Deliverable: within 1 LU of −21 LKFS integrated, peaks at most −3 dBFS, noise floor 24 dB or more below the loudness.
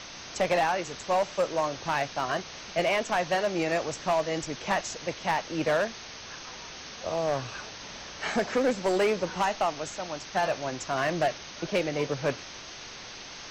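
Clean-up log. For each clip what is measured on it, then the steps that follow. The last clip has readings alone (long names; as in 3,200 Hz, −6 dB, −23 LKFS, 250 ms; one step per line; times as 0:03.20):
share of clipped samples 1.7%; peaks flattened at −19.5 dBFS; background noise floor −43 dBFS; target noise floor −53 dBFS; integrated loudness −29.0 LKFS; sample peak −19.5 dBFS; target loudness −21.0 LKFS
→ clipped peaks rebuilt −19.5 dBFS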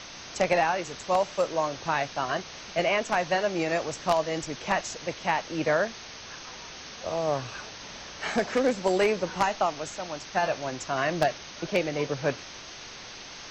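share of clipped samples 0.0%; background noise floor −43 dBFS; target noise floor −52 dBFS
→ broadband denoise 9 dB, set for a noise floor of −43 dBFS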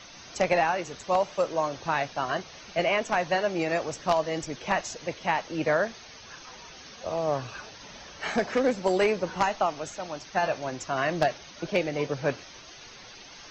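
background noise floor −47 dBFS; target noise floor −52 dBFS
→ broadband denoise 6 dB, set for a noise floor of −47 dBFS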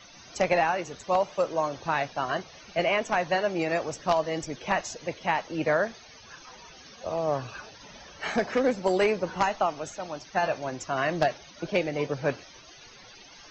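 background noise floor −50 dBFS; target noise floor −52 dBFS
→ broadband denoise 6 dB, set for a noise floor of −50 dBFS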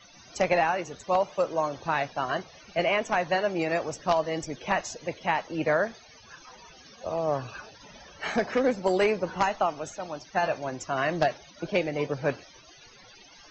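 background noise floor −53 dBFS; integrated loudness −28.0 LKFS; sample peak −10.5 dBFS; target loudness −21.0 LKFS
→ level +7 dB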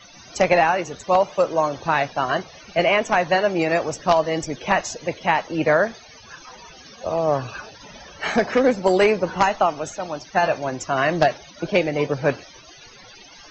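integrated loudness −21.0 LKFS; sample peak −3.5 dBFS; background noise floor −46 dBFS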